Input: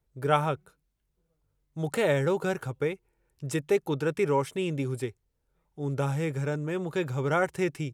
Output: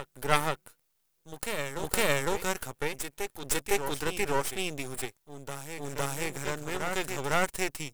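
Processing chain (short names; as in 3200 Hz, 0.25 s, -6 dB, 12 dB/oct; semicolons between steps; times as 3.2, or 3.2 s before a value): RIAA curve recording; reverse echo 0.508 s -7 dB; half-wave rectifier; gain +2.5 dB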